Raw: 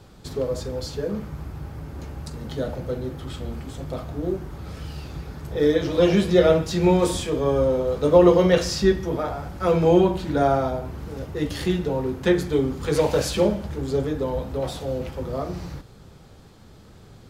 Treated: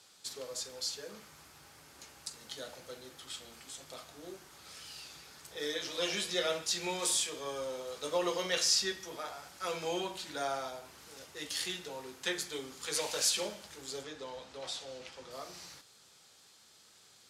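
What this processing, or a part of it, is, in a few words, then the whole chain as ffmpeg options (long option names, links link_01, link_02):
piezo pickup straight into a mixer: -filter_complex "[0:a]asettb=1/sr,asplit=3[link_01][link_02][link_03];[link_01]atrim=end=14.034[link_04];[link_02]atrim=start=14.03:end=15.31,asetpts=PTS-STARTPTS,afade=type=in:duration=0.004:curve=qsin,afade=type=out:start_time=1.276:duration=0.004:curve=qsin,lowpass=6300[link_05];[link_03]atrim=start=15.306[link_06];[link_04][link_05]acrossfade=duration=0.004:curve1=hsin:curve2=qsin[link_07];[link_07][link_06]acrossfade=duration=0.004:curve1=qsin:curve2=hsin,lowpass=8900,aderivative,volume=4.5dB"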